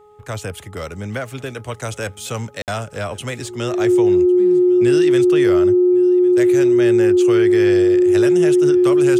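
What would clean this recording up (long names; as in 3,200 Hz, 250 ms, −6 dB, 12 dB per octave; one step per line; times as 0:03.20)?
hum removal 419.6 Hz, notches 3
notch filter 360 Hz, Q 30
repair the gap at 0:02.62, 58 ms
echo removal 1,104 ms −23 dB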